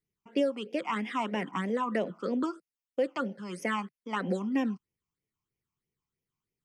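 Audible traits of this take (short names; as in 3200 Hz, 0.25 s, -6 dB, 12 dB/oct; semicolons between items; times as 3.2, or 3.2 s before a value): phasing stages 8, 3.1 Hz, lowest notch 490–1300 Hz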